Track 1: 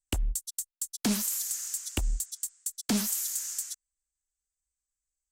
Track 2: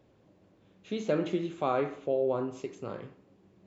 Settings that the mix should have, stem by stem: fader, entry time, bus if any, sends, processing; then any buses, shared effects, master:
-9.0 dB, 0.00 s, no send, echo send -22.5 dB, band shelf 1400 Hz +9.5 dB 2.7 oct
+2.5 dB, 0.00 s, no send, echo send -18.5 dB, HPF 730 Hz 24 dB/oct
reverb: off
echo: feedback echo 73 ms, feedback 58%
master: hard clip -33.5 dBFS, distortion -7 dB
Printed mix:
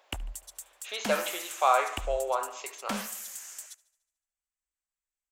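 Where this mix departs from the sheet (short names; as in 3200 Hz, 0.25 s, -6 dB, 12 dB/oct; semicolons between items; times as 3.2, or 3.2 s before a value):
stem 2 +2.5 dB -> +10.0 dB; master: missing hard clip -33.5 dBFS, distortion -7 dB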